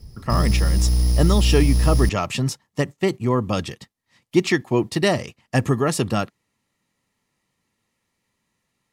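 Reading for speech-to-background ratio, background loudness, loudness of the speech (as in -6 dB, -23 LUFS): -2.5 dB, -20.5 LUFS, -23.0 LUFS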